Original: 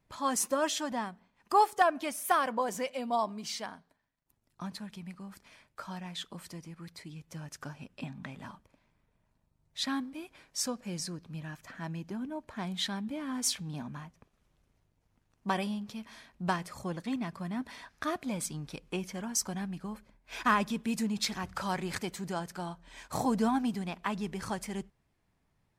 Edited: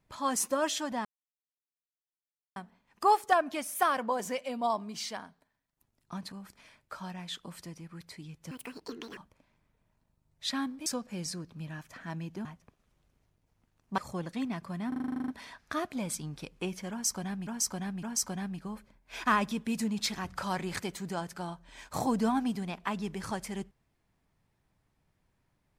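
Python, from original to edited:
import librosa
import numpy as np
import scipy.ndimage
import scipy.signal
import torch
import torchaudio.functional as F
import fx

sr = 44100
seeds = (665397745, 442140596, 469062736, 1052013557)

y = fx.edit(x, sr, fx.insert_silence(at_s=1.05, length_s=1.51),
    fx.cut(start_s=4.81, length_s=0.38),
    fx.speed_span(start_s=7.38, length_s=1.13, speed=1.71),
    fx.cut(start_s=10.2, length_s=0.4),
    fx.cut(start_s=12.19, length_s=1.8),
    fx.cut(start_s=15.52, length_s=1.17),
    fx.stutter(start_s=17.59, slice_s=0.04, count=11),
    fx.repeat(start_s=19.22, length_s=0.56, count=3), tone=tone)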